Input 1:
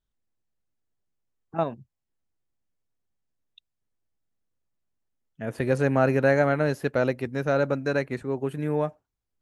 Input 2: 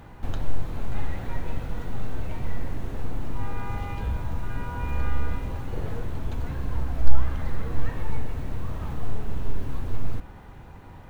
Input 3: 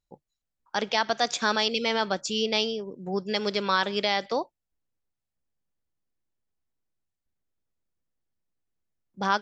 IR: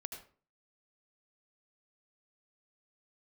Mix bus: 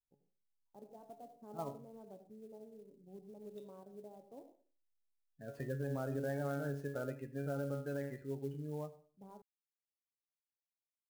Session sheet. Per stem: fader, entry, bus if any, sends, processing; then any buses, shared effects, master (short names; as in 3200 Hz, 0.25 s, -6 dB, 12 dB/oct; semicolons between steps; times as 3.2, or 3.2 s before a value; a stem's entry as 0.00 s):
-5.5 dB, 0.00 s, bus A, send -20.5 dB, spectral gate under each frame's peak -20 dB strong
off
-14.0 dB, 0.00 s, bus A, send -9 dB, Wiener smoothing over 25 samples; inverse Chebyshev low-pass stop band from 2900 Hz, stop band 70 dB; bell 490 Hz -5.5 dB 0.63 oct
bus A: 0.0 dB, resonator 140 Hz, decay 0.37 s, harmonics all, mix 90%; limiter -31.5 dBFS, peak gain reduction 11 dB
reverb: on, RT60 0.40 s, pre-delay 71 ms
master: clock jitter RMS 0.022 ms